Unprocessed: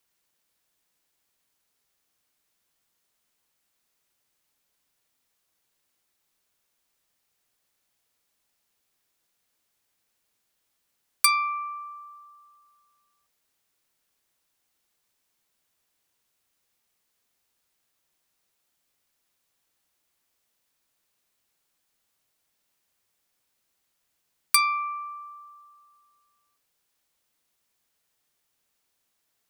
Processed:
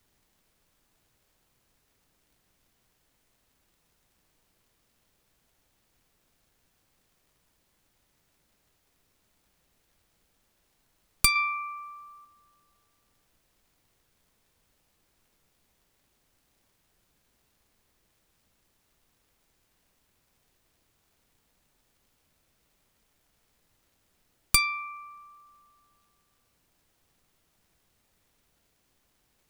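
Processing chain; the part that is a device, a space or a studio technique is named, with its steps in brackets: HPF 1500 Hz 24 dB/oct; 11.35–12.25 comb 5.1 ms, depth 98%; record under a worn stylus (tracing distortion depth 0.043 ms; crackle; pink noise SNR 32 dB)

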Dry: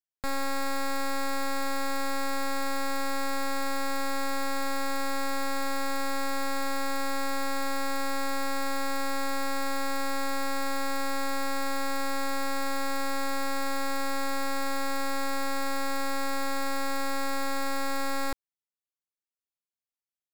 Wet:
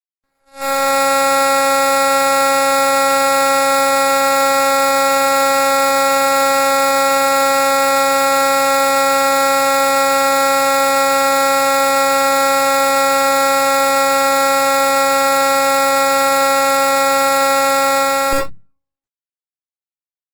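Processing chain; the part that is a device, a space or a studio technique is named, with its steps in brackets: speakerphone in a meeting room (reverb RT60 0.80 s, pre-delay 53 ms, DRR -2.5 dB; AGC gain up to 15.5 dB; gate -13 dBFS, range -43 dB; gain +2 dB; Opus 16 kbps 48000 Hz)

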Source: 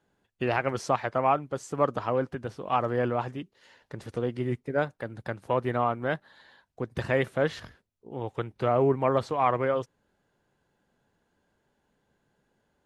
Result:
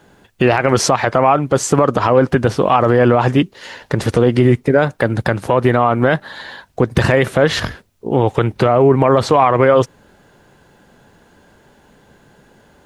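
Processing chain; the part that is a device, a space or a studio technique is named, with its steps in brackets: loud club master (compressor 2.5:1, threshold -27 dBFS, peak gain reduction 6.5 dB; hard clip -15.5 dBFS, distortion -47 dB; maximiser +24.5 dB); gain -1 dB

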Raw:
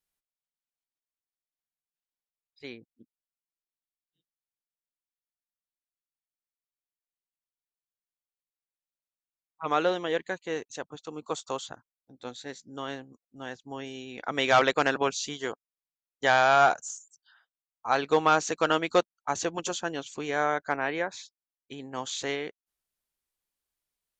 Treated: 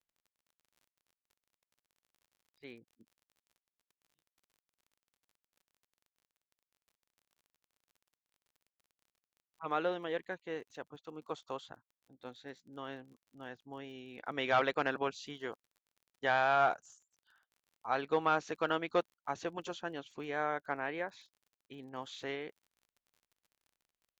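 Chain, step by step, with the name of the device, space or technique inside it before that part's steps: lo-fi chain (LPF 3400 Hz 12 dB/oct; wow and flutter 28 cents; crackle 38/s -47 dBFS); gain -8 dB

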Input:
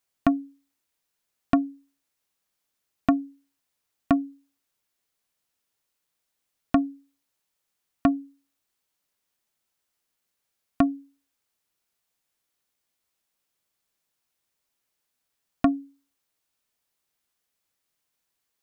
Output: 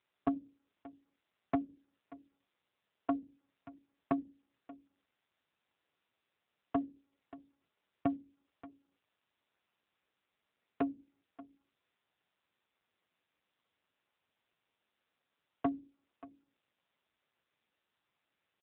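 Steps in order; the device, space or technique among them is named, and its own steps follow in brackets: satellite phone (BPF 300–3200 Hz; echo 0.584 s -19.5 dB; gain -7 dB; AMR-NB 6.7 kbps 8000 Hz)

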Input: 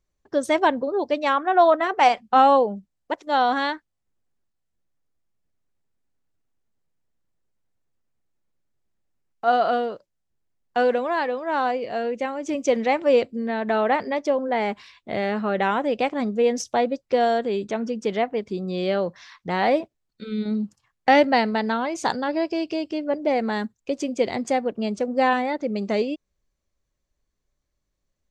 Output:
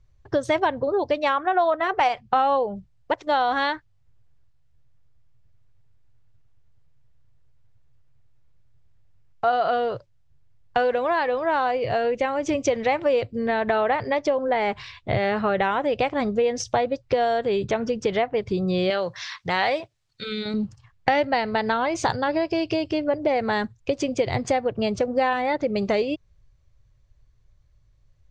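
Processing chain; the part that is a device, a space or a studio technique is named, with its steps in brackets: jukebox (LPF 5400 Hz 12 dB/oct; resonant low shelf 160 Hz +10.5 dB, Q 3; compressor 4:1, threshold -28 dBFS, peak gain reduction 13.5 dB); 18.9–20.54 tilt +3 dB/oct; gain +8 dB

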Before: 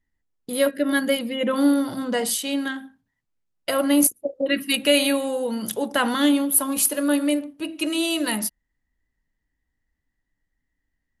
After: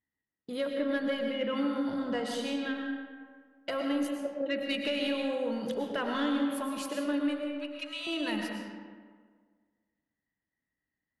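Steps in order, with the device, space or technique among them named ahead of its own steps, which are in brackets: AM radio (BPF 110–3900 Hz; compressor, threshold -20 dBFS, peak gain reduction 7.5 dB; soft clip -14 dBFS, distortion -25 dB); 7.51–8.07 HPF 1000 Hz 24 dB/oct; digital reverb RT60 1.7 s, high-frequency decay 0.55×, pre-delay 75 ms, DRR 2 dB; gain -7.5 dB

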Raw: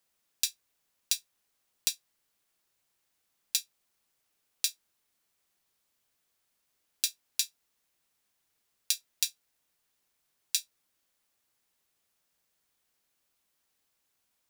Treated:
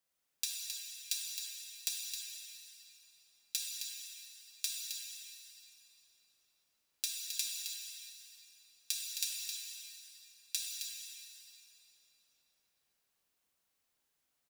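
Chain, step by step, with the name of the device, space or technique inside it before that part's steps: cave (echo 0.265 s -8 dB; reverb RT60 3.7 s, pre-delay 26 ms, DRR -2 dB); gain -8 dB

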